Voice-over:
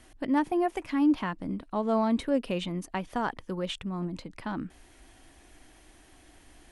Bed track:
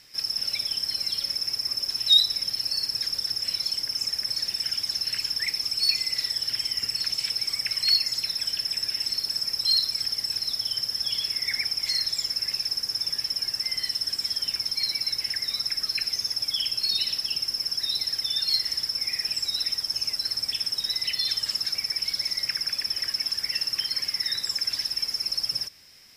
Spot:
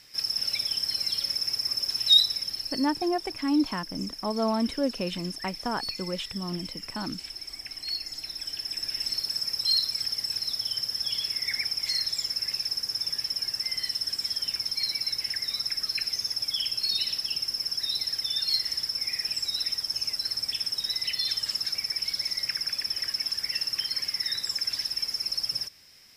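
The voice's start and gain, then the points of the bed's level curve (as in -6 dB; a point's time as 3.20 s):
2.50 s, -0.5 dB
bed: 2.18 s -0.5 dB
3.12 s -11.5 dB
7.88 s -11.5 dB
9.09 s -2 dB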